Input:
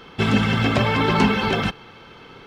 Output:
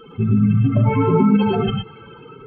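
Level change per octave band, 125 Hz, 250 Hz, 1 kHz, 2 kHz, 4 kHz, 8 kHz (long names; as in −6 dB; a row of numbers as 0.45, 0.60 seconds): +6.0 dB, +5.0 dB, −2.5 dB, −11.5 dB, −9.0 dB, below −40 dB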